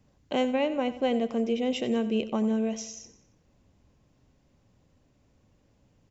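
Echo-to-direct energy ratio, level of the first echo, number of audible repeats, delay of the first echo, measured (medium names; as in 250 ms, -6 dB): -13.5 dB, -14.5 dB, 3, 91 ms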